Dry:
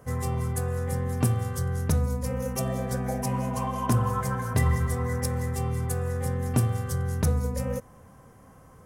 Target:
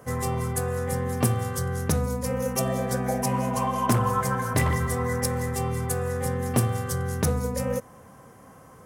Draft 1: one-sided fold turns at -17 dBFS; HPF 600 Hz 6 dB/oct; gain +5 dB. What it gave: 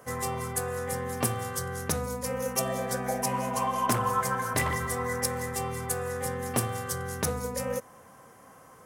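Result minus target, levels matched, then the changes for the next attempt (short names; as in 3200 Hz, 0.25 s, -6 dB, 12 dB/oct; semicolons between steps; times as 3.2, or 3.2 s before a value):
250 Hz band -3.0 dB
change: HPF 180 Hz 6 dB/oct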